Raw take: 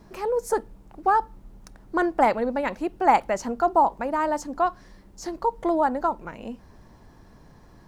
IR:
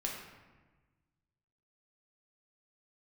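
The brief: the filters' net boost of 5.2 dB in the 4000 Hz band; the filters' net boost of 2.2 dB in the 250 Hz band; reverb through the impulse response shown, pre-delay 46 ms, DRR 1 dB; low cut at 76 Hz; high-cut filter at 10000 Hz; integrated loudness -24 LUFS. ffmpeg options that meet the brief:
-filter_complex "[0:a]highpass=76,lowpass=10k,equalizer=f=250:t=o:g=3,equalizer=f=4k:t=o:g=7,asplit=2[a][b];[1:a]atrim=start_sample=2205,adelay=46[c];[b][c]afir=irnorm=-1:irlink=0,volume=-3dB[d];[a][d]amix=inputs=2:normalize=0,volume=-2dB"

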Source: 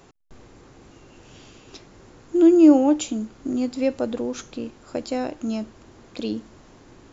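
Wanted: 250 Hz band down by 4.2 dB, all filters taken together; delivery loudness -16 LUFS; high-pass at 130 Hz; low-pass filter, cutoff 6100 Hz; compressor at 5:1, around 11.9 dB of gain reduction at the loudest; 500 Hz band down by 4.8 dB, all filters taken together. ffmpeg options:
-af "highpass=130,lowpass=6.1k,equalizer=f=250:t=o:g=-3,equalizer=f=500:t=o:g=-5.5,acompressor=threshold=-26dB:ratio=5,volume=17dB"

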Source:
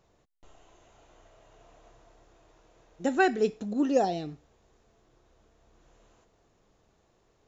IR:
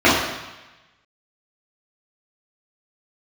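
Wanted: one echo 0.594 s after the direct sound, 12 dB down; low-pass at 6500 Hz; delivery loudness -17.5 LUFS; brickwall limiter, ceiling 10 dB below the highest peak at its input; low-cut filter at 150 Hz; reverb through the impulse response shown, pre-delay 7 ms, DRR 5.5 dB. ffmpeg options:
-filter_complex "[0:a]highpass=150,lowpass=6.5k,alimiter=limit=-22dB:level=0:latency=1,aecho=1:1:594:0.251,asplit=2[a][b];[1:a]atrim=start_sample=2205,adelay=7[c];[b][c]afir=irnorm=-1:irlink=0,volume=-32.5dB[d];[a][d]amix=inputs=2:normalize=0,volume=14dB"

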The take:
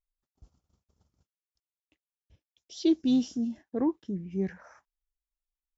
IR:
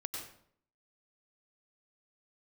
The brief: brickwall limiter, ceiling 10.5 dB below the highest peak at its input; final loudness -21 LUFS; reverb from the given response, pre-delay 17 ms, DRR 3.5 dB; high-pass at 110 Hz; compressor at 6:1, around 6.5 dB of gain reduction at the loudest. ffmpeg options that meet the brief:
-filter_complex "[0:a]highpass=110,acompressor=threshold=-27dB:ratio=6,alimiter=level_in=6dB:limit=-24dB:level=0:latency=1,volume=-6dB,asplit=2[a][b];[1:a]atrim=start_sample=2205,adelay=17[c];[b][c]afir=irnorm=-1:irlink=0,volume=-3.5dB[d];[a][d]amix=inputs=2:normalize=0,volume=16.5dB"

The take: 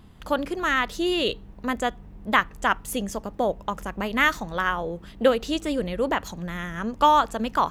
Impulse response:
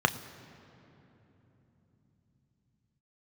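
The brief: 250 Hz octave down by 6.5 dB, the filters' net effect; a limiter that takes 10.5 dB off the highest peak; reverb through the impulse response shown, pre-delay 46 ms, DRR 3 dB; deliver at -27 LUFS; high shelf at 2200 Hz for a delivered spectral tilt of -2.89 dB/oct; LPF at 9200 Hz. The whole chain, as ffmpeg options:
-filter_complex "[0:a]lowpass=9.2k,equalizer=f=250:t=o:g=-8.5,highshelf=f=2.2k:g=-8,alimiter=limit=-17.5dB:level=0:latency=1,asplit=2[a][b];[1:a]atrim=start_sample=2205,adelay=46[c];[b][c]afir=irnorm=-1:irlink=0,volume=-16dB[d];[a][d]amix=inputs=2:normalize=0,volume=2.5dB"

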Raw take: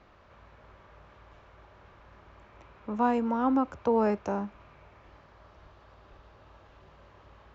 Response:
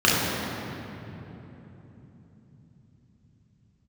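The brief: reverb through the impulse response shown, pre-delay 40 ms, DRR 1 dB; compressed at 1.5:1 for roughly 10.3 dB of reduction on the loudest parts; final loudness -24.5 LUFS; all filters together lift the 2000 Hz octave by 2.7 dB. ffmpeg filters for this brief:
-filter_complex "[0:a]equalizer=f=2k:t=o:g=4,acompressor=threshold=-50dB:ratio=1.5,asplit=2[a][b];[1:a]atrim=start_sample=2205,adelay=40[c];[b][c]afir=irnorm=-1:irlink=0,volume=-22.5dB[d];[a][d]amix=inputs=2:normalize=0,volume=10dB"

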